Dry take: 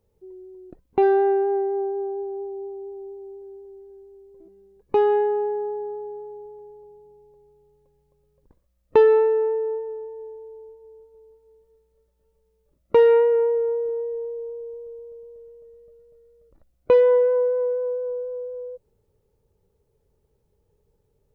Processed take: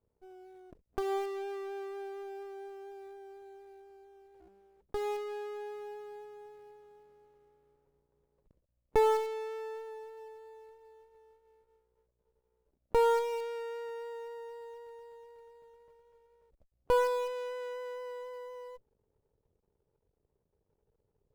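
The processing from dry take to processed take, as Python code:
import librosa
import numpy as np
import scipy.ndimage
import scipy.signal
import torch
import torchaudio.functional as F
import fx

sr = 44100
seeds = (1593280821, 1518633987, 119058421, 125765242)

p1 = scipy.signal.sosfilt(scipy.signal.cheby1(2, 1.0, 550.0, 'lowpass', fs=sr, output='sos'), x)
p2 = np.maximum(p1, 0.0)
p3 = fx.quant_float(p2, sr, bits=2)
p4 = p2 + (p3 * librosa.db_to_amplitude(-7.5))
p5 = fx.cheby_harmonics(p4, sr, harmonics=(8,), levels_db=(-20,), full_scale_db=-4.5)
y = p5 * librosa.db_to_amplitude(-7.5)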